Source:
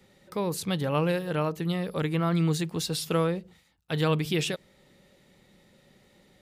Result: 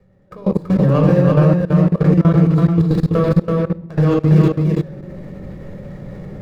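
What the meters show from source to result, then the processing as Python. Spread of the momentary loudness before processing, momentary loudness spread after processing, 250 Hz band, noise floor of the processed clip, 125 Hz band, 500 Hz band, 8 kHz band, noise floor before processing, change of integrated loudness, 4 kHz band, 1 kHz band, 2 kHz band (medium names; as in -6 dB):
7 LU, 21 LU, +15.5 dB, -39 dBFS, +16.5 dB, +11.5 dB, under -10 dB, -62 dBFS, +13.5 dB, no reading, +7.0 dB, +3.0 dB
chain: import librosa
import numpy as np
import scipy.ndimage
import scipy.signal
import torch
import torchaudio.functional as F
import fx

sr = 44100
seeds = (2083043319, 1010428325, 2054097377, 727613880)

y = scipy.signal.medfilt(x, 15)
y = fx.recorder_agc(y, sr, target_db=-20.0, rise_db_per_s=19.0, max_gain_db=30)
y = fx.high_shelf(y, sr, hz=2600.0, db=-8.5)
y = fx.room_shoebox(y, sr, seeds[0], volume_m3=3100.0, walls='furnished', distance_m=5.7)
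y = fx.level_steps(y, sr, step_db=21)
y = fx.low_shelf(y, sr, hz=140.0, db=7.0)
y = y + 10.0 ** (-3.0 / 20.0) * np.pad(y, (int(331 * sr / 1000.0), 0))[:len(y)]
y = y * 10.0 ** (6.0 / 20.0)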